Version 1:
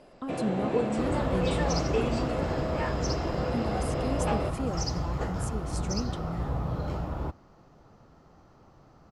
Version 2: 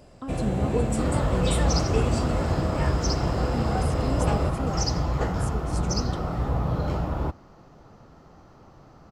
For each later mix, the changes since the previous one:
first sound: remove band-pass 230–4300 Hz; second sound +5.5 dB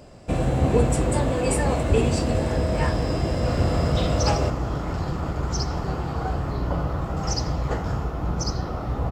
speech: muted; first sound +5.0 dB; second sound: entry +2.50 s

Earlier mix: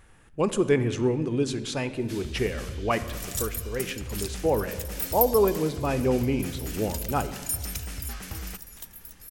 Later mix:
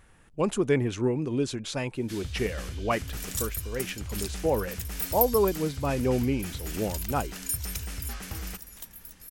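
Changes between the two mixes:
speech: send off; second sound: send off

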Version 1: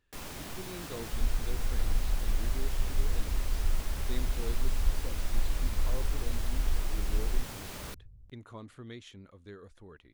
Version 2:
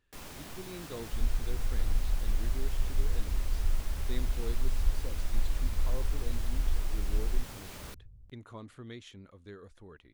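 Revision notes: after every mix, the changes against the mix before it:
first sound -3.5 dB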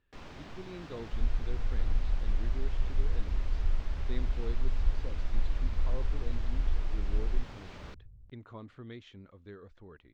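master: add distance through air 180 m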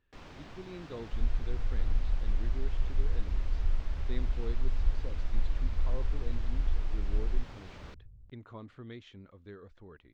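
reverb: off

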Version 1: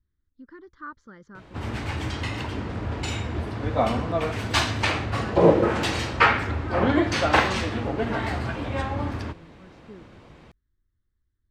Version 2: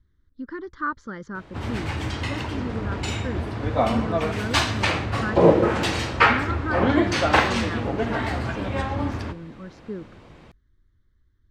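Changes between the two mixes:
speech +11.5 dB; reverb: on, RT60 1.2 s

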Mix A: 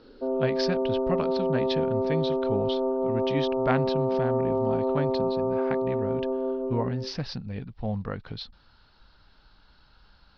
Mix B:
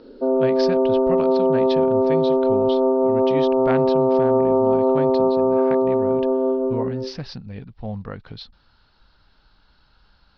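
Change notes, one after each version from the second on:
background +8.5 dB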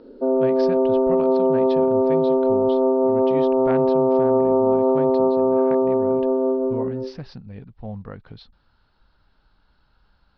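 speech -3.0 dB; master: add treble shelf 2.9 kHz -9.5 dB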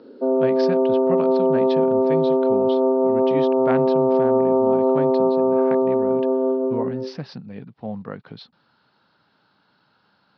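speech +4.5 dB; master: add high-pass 140 Hz 24 dB/octave

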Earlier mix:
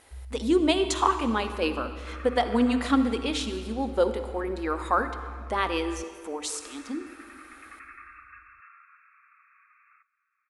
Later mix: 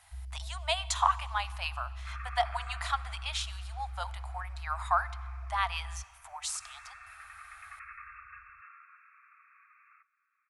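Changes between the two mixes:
speech: send -10.5 dB; master: add Chebyshev band-stop 130–670 Hz, order 5

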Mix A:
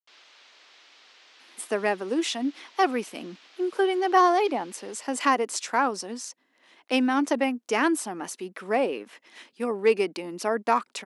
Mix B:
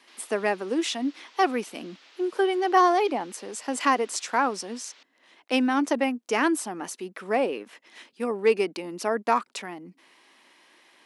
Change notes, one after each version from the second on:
speech: entry -1.40 s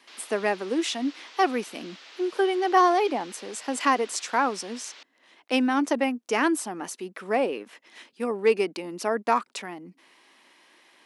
background +7.0 dB

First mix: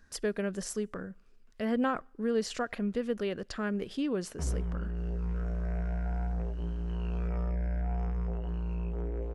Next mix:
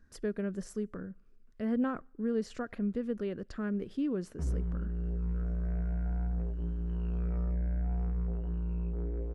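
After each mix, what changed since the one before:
master: add FFT filter 300 Hz 0 dB, 800 Hz -9 dB, 1.4 kHz -6 dB, 3 kHz -12 dB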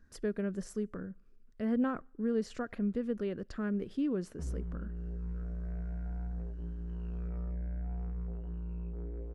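background -5.5 dB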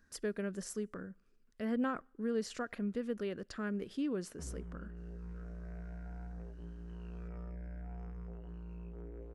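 master: add tilt EQ +2 dB/octave

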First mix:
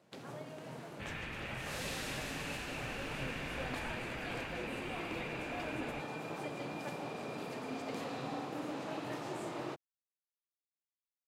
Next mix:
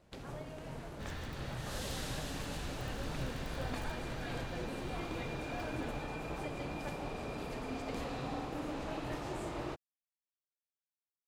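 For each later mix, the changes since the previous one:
first sound: remove high-pass 120 Hz 24 dB/octave; second sound: remove resonant low-pass 2.5 kHz, resonance Q 4.3; master: add bass shelf 82 Hz +7.5 dB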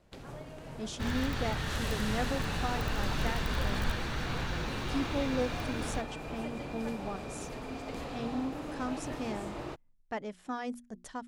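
speech: unmuted; second sound +11.0 dB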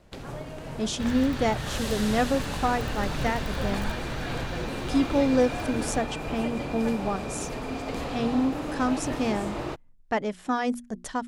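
speech +10.5 dB; first sound +7.5 dB

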